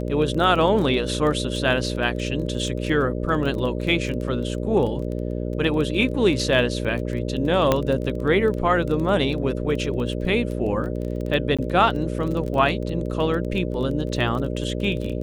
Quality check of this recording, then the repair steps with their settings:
buzz 60 Hz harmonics 10 -27 dBFS
crackle 20 per s -28 dBFS
7.72 s: pop -5 dBFS
11.57–11.59 s: dropout 16 ms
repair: de-click; de-hum 60 Hz, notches 10; interpolate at 11.57 s, 16 ms

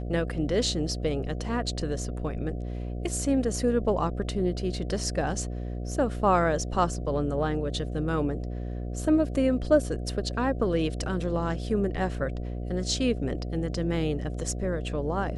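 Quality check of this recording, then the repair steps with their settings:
buzz 60 Hz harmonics 12 -33 dBFS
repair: de-hum 60 Hz, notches 12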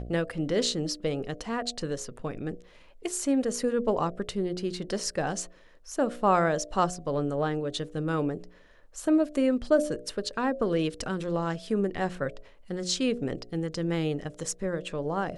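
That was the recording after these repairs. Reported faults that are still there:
nothing left

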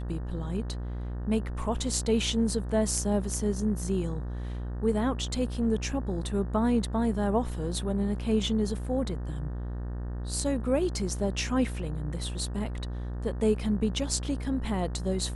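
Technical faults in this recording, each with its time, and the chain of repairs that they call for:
buzz 60 Hz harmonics 31 -34 dBFS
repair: de-hum 60 Hz, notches 31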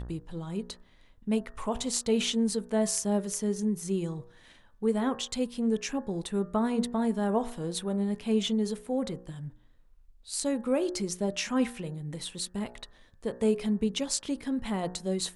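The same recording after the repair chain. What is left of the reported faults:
nothing left

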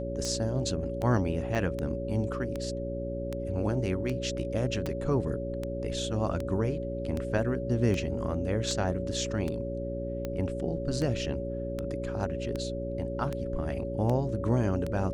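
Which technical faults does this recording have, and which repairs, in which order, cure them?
hum 60 Hz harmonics 7 -36 dBFS
tick 78 rpm -20 dBFS
whine 560 Hz -35 dBFS
1.55 s: dropout 2.3 ms
4.86 s: pop -20 dBFS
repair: de-click; de-hum 60 Hz, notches 7; band-stop 560 Hz, Q 30; interpolate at 1.55 s, 2.3 ms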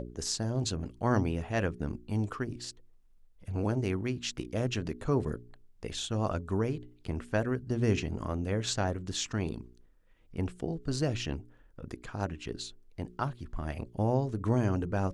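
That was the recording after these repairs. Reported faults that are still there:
nothing left

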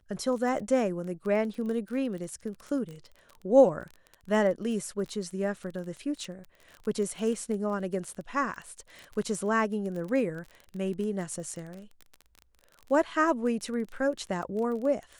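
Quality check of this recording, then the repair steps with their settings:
crackle 21 per s -35 dBFS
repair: de-click

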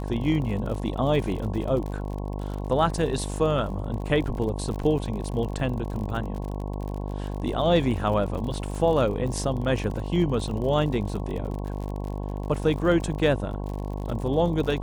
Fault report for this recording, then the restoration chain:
buzz 50 Hz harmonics 22 -31 dBFS
crackle 58 per s -33 dBFS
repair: de-click; de-hum 50 Hz, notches 22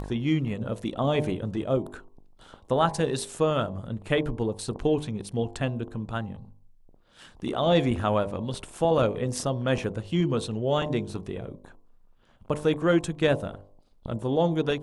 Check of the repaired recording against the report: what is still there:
nothing left

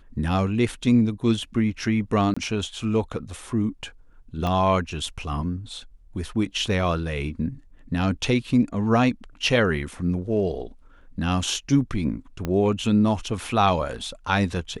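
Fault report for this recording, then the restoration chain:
2.34–2.37 s: dropout 25 ms
4.47 s: pop -15 dBFS
12.45 s: pop -14 dBFS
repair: de-click; interpolate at 2.34 s, 25 ms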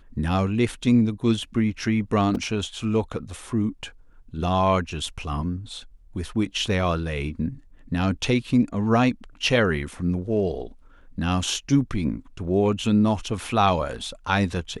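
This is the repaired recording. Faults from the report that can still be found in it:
4.47 s: pop
12.45 s: pop

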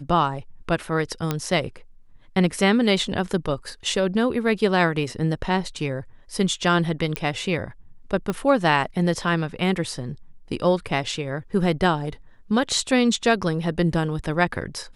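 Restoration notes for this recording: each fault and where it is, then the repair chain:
1.31 s: pop -9 dBFS
7.16 s: pop -11 dBFS
8.30 s: pop -13 dBFS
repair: de-click

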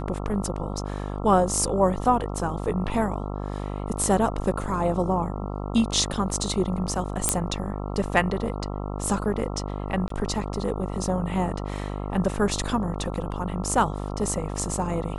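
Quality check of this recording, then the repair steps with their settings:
buzz 50 Hz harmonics 27 -31 dBFS
7.29 s: pop -5 dBFS
10.08–10.10 s: dropout 23 ms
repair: de-click; de-hum 50 Hz, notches 27; interpolate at 10.08 s, 23 ms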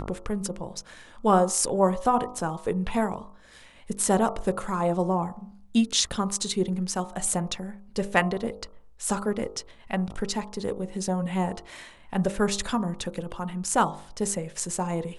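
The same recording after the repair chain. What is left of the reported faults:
nothing left

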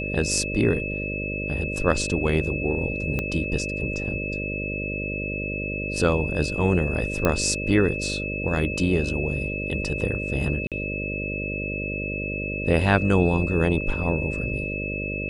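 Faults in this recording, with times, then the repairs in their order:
buzz 50 Hz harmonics 12 -31 dBFS
whine 2.6 kHz -30 dBFS
3.19 s: pop -13 dBFS
7.25 s: pop -8 dBFS
10.67–10.72 s: dropout 47 ms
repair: de-click; de-hum 50 Hz, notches 12; band-stop 2.6 kHz, Q 30; interpolate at 10.67 s, 47 ms

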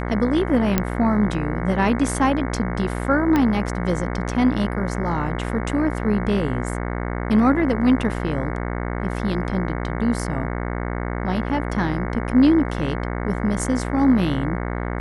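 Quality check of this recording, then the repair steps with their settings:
buzz 60 Hz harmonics 37 -26 dBFS
0.78 s: pop -4 dBFS
3.36 s: pop -8 dBFS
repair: de-click; de-hum 60 Hz, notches 37

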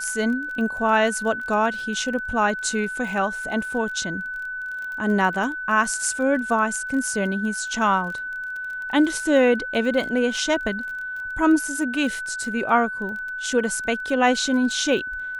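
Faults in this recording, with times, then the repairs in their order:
crackle 23 per s -31 dBFS
whine 1.5 kHz -28 dBFS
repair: de-click; band-stop 1.5 kHz, Q 30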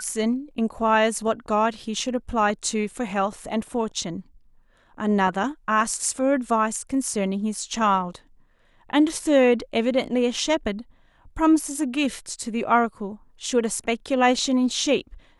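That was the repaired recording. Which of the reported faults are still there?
nothing left

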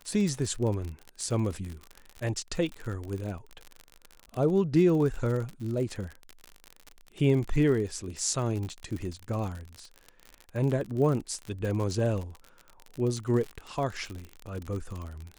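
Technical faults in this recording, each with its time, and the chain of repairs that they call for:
crackle 50 per s -33 dBFS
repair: de-click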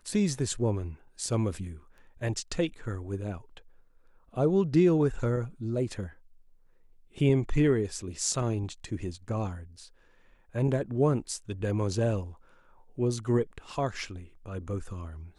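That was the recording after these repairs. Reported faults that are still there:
nothing left

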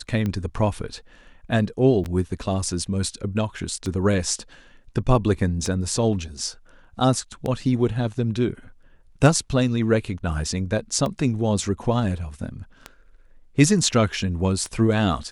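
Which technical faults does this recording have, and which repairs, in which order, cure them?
tick 33 1/3 rpm -15 dBFS
2.04–2.05 s: dropout 7.2 ms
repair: de-click; interpolate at 2.04 s, 7.2 ms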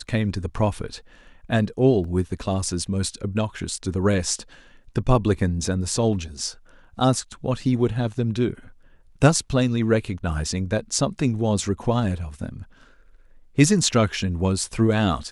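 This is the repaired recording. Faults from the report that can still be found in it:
nothing left

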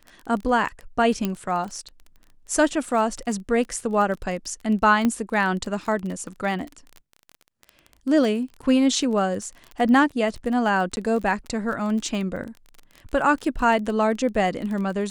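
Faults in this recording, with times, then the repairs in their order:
crackle 21 per s -30 dBFS
1.25 s: pop -11 dBFS
5.05 s: pop -10 dBFS
10.96–10.97 s: dropout 11 ms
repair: de-click; interpolate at 10.96 s, 11 ms

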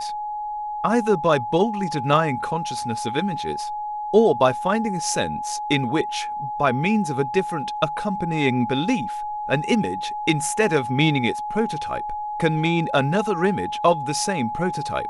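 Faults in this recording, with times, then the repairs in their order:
whine 840 Hz -26 dBFS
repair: band-stop 840 Hz, Q 30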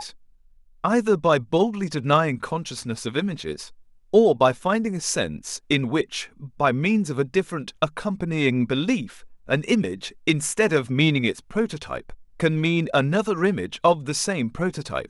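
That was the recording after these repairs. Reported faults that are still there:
nothing left

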